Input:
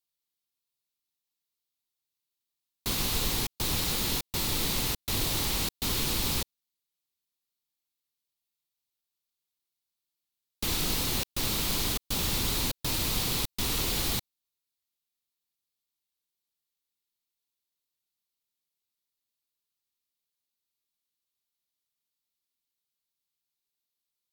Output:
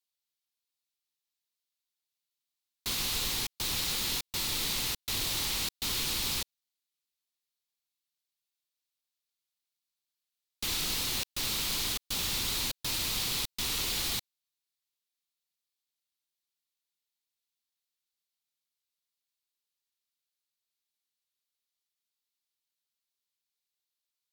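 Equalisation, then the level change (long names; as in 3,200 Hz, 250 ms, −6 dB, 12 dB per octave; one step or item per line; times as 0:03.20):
tilt shelving filter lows −5.5 dB, about 1,200 Hz
high-shelf EQ 8,300 Hz −6.5 dB
−3.5 dB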